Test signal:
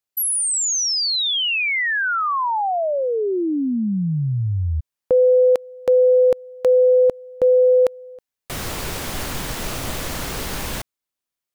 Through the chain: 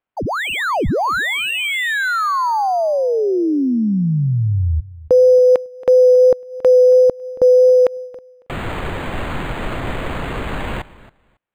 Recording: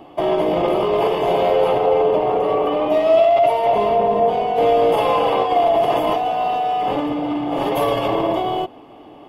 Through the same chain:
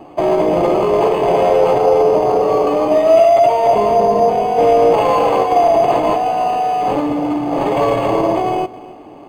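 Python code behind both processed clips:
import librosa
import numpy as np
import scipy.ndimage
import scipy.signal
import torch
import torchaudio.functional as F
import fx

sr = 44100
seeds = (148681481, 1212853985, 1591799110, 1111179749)

y = fx.air_absorb(x, sr, metres=53.0)
y = fx.vibrato(y, sr, rate_hz=2.9, depth_cents=8.7)
y = fx.high_shelf(y, sr, hz=8500.0, db=8.5)
y = fx.echo_feedback(y, sr, ms=276, feedback_pct=16, wet_db=-19)
y = np.interp(np.arange(len(y)), np.arange(len(y))[::8], y[::8])
y = y * librosa.db_to_amplitude(4.5)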